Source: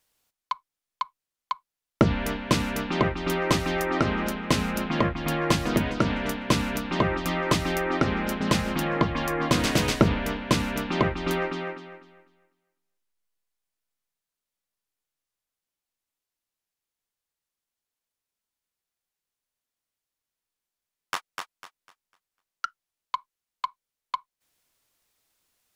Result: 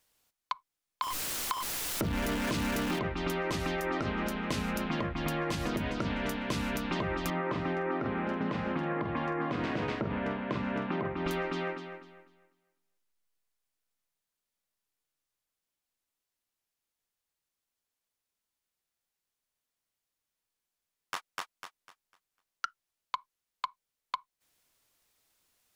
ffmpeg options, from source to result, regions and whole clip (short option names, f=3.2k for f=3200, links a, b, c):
-filter_complex "[0:a]asettb=1/sr,asplit=3[a][b][c];[a]atrim=end=1.024[d];[b]atrim=start=1.02:end=2.99,asetpts=PTS-STARTPTS,afade=t=in:d=0.004:c=qsin,afade=t=out:st=1.966:d=0.004:c=qsin,aeval=exprs='val(0)+0.5*0.0501*sgn(val(0))':c=same,equalizer=f=310:t=o:w=0.24:g=4[e];[c]atrim=start=2.986[f];[d][e]acrossfade=d=0.004:c1=hsin:c2=qsin[g];[g][f]acrossfade=d=0.004:c1=qsin:c2=hsin,asettb=1/sr,asplit=3[h][i][j];[h]atrim=end=7.304[k];[i]atrim=start=7.3:end=11.26,asetpts=PTS-STARTPTS,afade=t=in:d=0.004:c=qsin,afade=t=out:st=3.956:d=0.004:c=qsin,highpass=120,lowpass=2k,asplit=2[l][m];[m]adelay=46,volume=-10.5dB[n];[l][n]amix=inputs=2:normalize=0,atrim=end_sample=174636[o];[j]atrim=start=11.256[p];[k][o]acrossfade=d=0.004:c1=hsin:c2=qsin[q];[q][p]acrossfade=d=0.004:c1=qsin:c2=hsin,alimiter=limit=-17.5dB:level=0:latency=1:release=72,acompressor=threshold=-29dB:ratio=6"